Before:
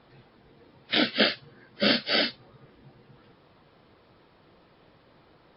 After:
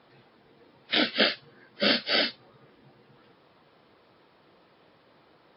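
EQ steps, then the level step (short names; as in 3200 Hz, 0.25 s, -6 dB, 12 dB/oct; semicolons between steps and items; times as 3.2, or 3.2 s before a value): HPF 230 Hz 6 dB/oct; 0.0 dB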